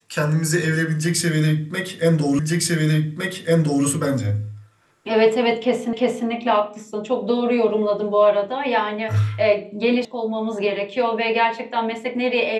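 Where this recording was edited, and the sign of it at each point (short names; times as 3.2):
2.39 repeat of the last 1.46 s
5.93 repeat of the last 0.35 s
10.05 sound cut off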